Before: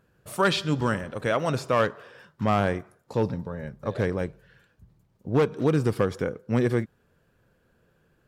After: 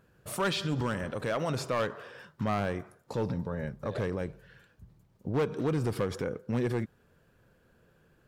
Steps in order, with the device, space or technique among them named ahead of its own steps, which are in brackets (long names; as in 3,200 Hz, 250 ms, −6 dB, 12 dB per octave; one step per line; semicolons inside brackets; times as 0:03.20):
clipper into limiter (hard clipping −17.5 dBFS, distortion −16 dB; brickwall limiter −24.5 dBFS, peak gain reduction 7 dB)
level +1 dB